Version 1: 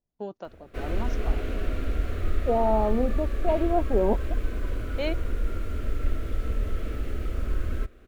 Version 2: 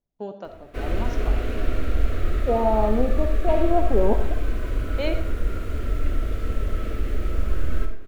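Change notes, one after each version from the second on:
reverb: on, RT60 0.55 s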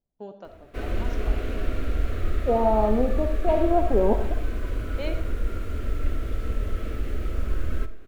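first voice −6.0 dB
background: send −9.0 dB

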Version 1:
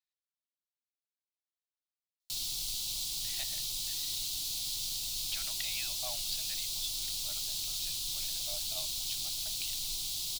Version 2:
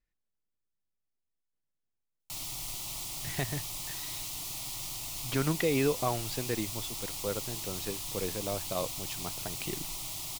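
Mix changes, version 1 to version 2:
speech: remove Chebyshev high-pass with heavy ripple 590 Hz, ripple 6 dB
master: add octave-band graphic EQ 125/250/500/1,000/2,000/4,000 Hz +7/+4/+8/+11/+10/−11 dB

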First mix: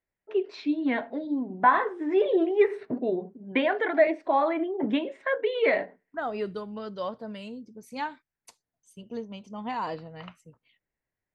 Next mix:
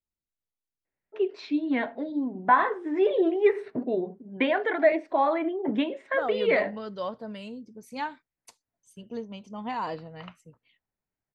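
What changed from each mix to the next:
first voice: entry +0.85 s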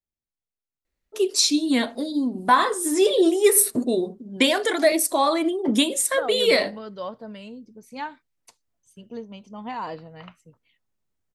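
first voice: remove loudspeaker in its box 150–2,100 Hz, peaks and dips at 230 Hz −8 dB, 340 Hz −5 dB, 500 Hz −5 dB, 1,200 Hz −7 dB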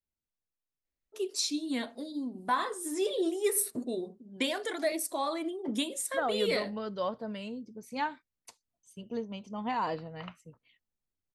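first voice −12.0 dB

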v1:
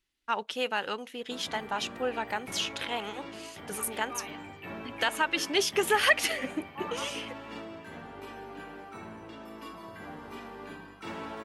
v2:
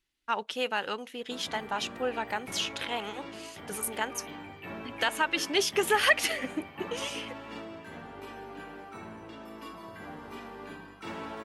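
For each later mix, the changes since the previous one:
second voice −8.5 dB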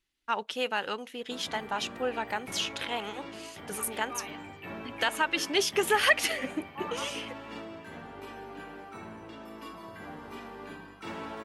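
second voice +9.0 dB

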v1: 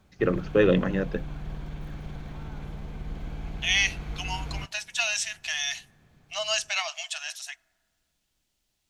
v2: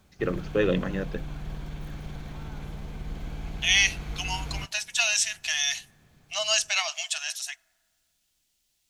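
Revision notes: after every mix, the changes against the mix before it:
first voice −4.0 dB
master: add high-shelf EQ 4,000 Hz +7.5 dB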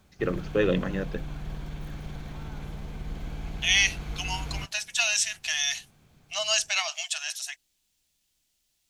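reverb: off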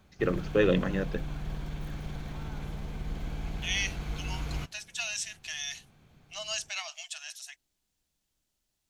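second voice −9.5 dB

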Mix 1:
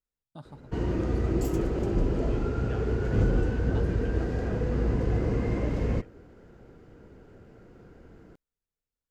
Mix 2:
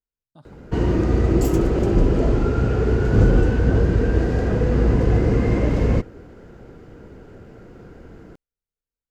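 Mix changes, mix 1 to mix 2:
first voice −4.0 dB
background +9.0 dB

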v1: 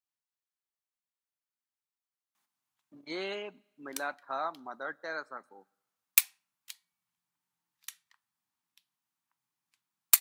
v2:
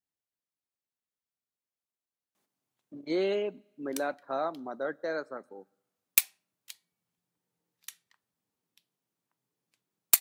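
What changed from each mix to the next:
background: add parametric band 480 Hz +12.5 dB 0.4 octaves
master: add low shelf with overshoot 710 Hz +8.5 dB, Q 1.5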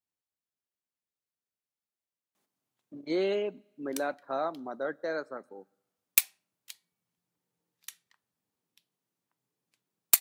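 nothing changed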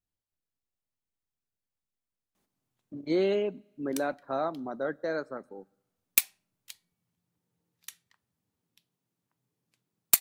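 master: remove high-pass filter 350 Hz 6 dB per octave

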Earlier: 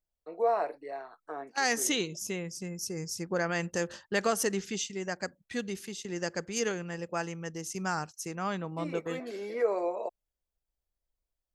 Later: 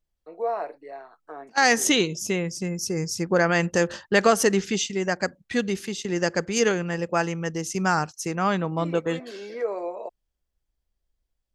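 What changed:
second voice +10.0 dB
master: add high-shelf EQ 8,000 Hz −9.5 dB

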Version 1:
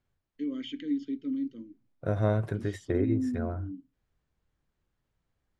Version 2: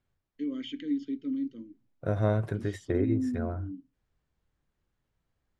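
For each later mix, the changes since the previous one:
nothing changed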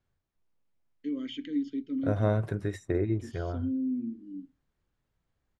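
first voice: entry +0.65 s

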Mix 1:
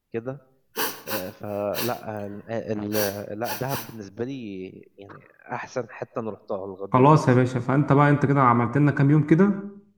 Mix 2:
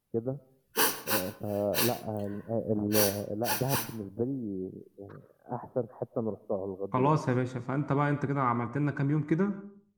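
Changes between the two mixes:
first voice: add Gaussian smoothing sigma 10 samples
second voice −10.0 dB
background: add parametric band 10,000 Hz +5.5 dB 0.59 octaves

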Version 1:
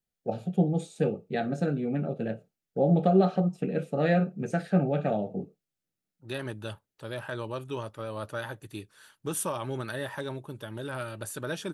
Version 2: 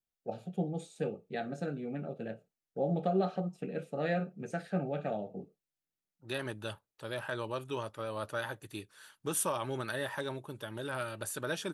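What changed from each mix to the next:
first voice −5.5 dB
master: add low-shelf EQ 330 Hz −6 dB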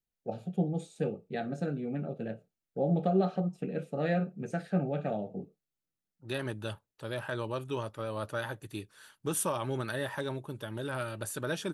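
master: add low-shelf EQ 330 Hz +6 dB

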